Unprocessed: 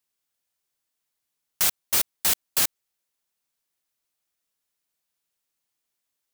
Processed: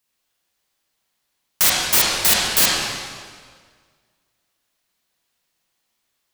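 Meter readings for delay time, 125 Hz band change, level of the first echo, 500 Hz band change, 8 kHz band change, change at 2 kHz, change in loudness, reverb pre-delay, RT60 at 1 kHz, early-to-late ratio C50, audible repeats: no echo, +11.0 dB, no echo, +11.5 dB, +7.0 dB, +12.0 dB, +7.0 dB, 30 ms, 1.7 s, -3.0 dB, no echo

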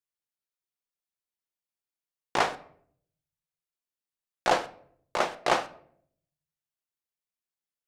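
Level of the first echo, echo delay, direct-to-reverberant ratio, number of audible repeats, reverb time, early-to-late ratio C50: no echo, no echo, 10.0 dB, no echo, 0.60 s, 16.5 dB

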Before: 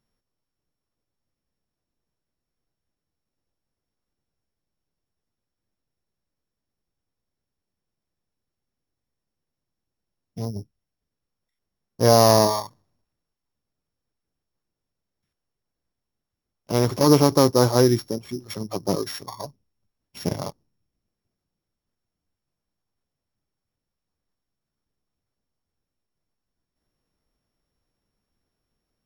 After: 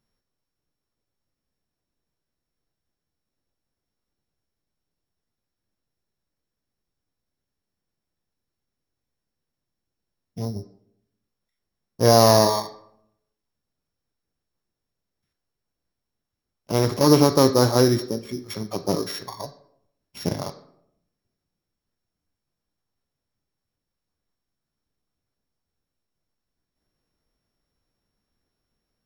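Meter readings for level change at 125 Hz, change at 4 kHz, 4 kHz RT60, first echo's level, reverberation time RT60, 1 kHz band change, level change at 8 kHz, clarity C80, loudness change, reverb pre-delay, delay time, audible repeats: 0.0 dB, +1.5 dB, 0.40 s, no echo, 0.75 s, +0.5 dB, 0.0 dB, 15.5 dB, 0.0 dB, 14 ms, no echo, no echo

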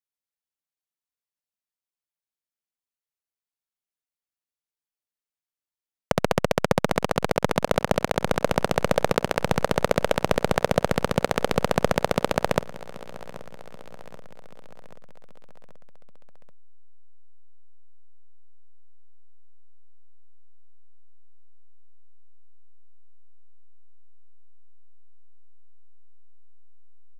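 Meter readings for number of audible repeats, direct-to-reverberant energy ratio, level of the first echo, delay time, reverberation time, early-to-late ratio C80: 4, no reverb, -18.5 dB, 782 ms, no reverb, no reverb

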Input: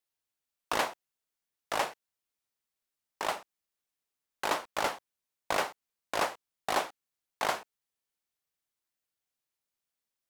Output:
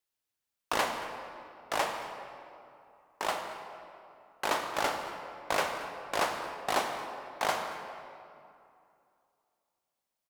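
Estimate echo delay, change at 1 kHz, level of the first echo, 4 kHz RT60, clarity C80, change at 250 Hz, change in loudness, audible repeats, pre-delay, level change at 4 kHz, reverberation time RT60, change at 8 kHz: 227 ms, +1.5 dB, -18.5 dB, 1.6 s, 6.0 dB, +1.5 dB, 0.0 dB, 1, 28 ms, +1.0 dB, 2.6 s, +0.5 dB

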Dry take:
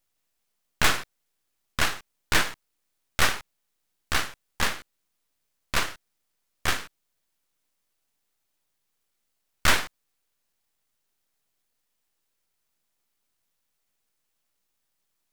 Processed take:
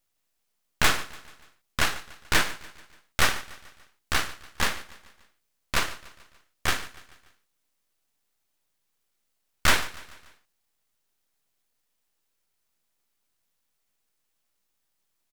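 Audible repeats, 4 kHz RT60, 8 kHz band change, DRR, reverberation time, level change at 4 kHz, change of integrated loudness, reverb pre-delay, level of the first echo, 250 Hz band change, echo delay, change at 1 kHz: 3, no reverb, 0.0 dB, no reverb, no reverb, 0.0 dB, 0.0 dB, no reverb, -19.0 dB, 0.0 dB, 145 ms, 0.0 dB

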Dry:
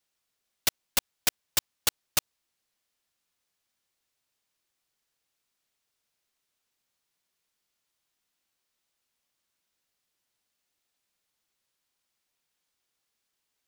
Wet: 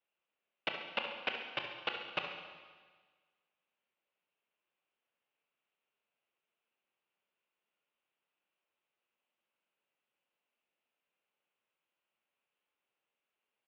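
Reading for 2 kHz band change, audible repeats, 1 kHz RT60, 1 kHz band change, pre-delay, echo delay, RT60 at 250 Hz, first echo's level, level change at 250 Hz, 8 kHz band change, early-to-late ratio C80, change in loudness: -2.5 dB, 2, 1.5 s, -2.0 dB, 21 ms, 69 ms, 1.5 s, -10.0 dB, -5.0 dB, under -40 dB, 6.5 dB, -10.5 dB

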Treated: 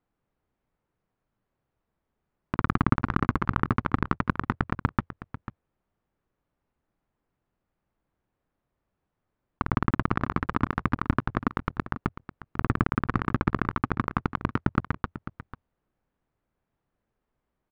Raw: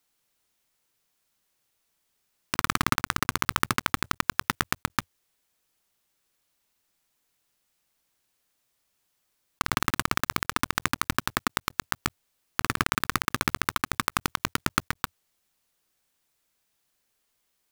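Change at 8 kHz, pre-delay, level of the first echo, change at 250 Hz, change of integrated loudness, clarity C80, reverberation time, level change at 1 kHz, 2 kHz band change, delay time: under -30 dB, no reverb, -13.5 dB, +6.5 dB, -1.0 dB, no reverb, no reverb, -1.5 dB, -5.5 dB, 494 ms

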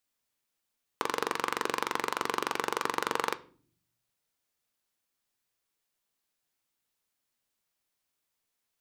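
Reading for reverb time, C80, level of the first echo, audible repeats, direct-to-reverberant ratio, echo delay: 0.50 s, 24.0 dB, no echo, no echo, 11.5 dB, no echo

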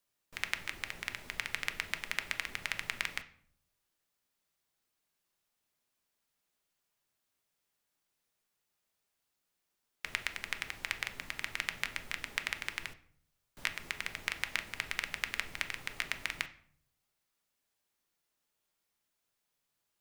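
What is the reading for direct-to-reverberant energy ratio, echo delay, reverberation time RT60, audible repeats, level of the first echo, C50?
8.0 dB, no echo, 0.55 s, no echo, no echo, 15.0 dB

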